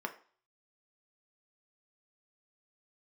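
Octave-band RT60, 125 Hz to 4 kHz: 0.30 s, 0.40 s, 0.40 s, 0.45 s, 0.45 s, 0.45 s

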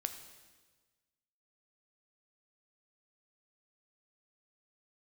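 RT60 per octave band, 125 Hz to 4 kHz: 1.6 s, 1.4 s, 1.4 s, 1.3 s, 1.3 s, 1.3 s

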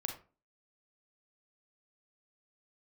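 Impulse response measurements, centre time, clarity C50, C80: 19 ms, 8.0 dB, 13.5 dB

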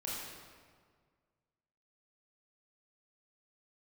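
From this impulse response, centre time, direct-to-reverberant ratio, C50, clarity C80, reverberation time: 109 ms, -6.5 dB, -2.0 dB, 0.5 dB, 1.8 s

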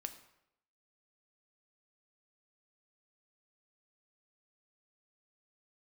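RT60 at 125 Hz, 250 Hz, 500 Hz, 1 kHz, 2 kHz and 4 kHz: 0.75 s, 0.75 s, 0.80 s, 0.75 s, 0.70 s, 0.60 s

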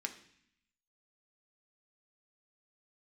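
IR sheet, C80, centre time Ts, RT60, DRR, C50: 15.0 dB, 9 ms, 0.65 s, 4.5 dB, 12.0 dB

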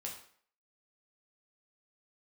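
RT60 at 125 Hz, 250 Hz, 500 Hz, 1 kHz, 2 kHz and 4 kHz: 0.45 s, 0.50 s, 0.55 s, 0.55 s, 0.55 s, 0.45 s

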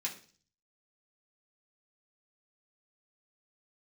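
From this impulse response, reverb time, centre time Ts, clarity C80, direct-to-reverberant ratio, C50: 0.40 s, 16 ms, 15.5 dB, -3.5 dB, 11.0 dB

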